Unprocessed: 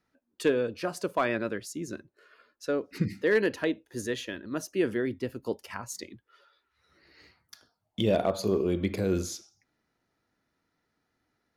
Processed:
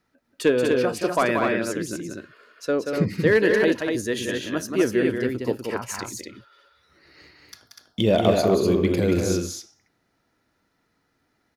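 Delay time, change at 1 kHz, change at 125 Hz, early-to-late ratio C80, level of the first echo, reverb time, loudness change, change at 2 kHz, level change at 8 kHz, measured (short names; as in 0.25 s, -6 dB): 0.181 s, +8.0 dB, +7.5 dB, none, -5.5 dB, none, +7.5 dB, +8.0 dB, +7.5 dB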